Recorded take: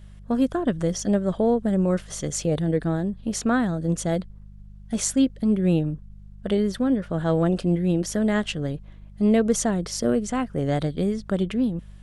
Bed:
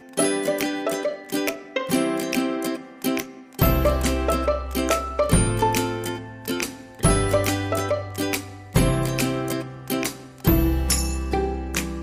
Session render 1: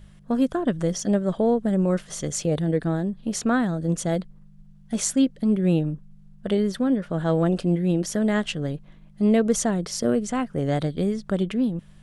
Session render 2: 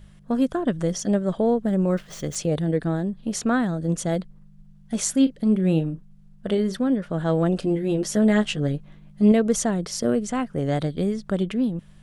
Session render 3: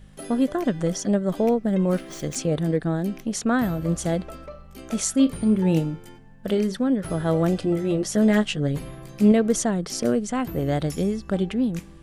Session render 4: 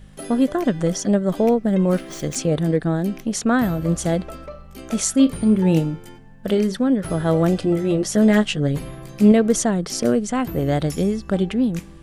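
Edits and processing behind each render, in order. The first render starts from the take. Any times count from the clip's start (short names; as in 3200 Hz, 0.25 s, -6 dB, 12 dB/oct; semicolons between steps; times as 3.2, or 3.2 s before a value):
de-hum 50 Hz, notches 2
1.5–2.36 median filter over 5 samples; 5.11–6.77 doubler 37 ms -12.5 dB; 7.61–9.32 doubler 14 ms -3.5 dB
add bed -18 dB
gain +3.5 dB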